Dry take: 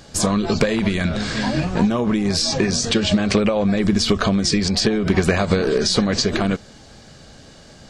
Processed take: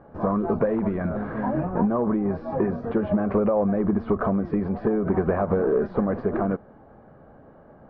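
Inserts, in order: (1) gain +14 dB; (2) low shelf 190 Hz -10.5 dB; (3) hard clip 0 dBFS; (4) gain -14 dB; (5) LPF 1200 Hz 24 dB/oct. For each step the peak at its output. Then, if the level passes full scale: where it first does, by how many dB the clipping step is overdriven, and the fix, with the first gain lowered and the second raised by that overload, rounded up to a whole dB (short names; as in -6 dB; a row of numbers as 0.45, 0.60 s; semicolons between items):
+8.0, +9.0, 0.0, -14.0, -12.5 dBFS; step 1, 9.0 dB; step 1 +5 dB, step 4 -5 dB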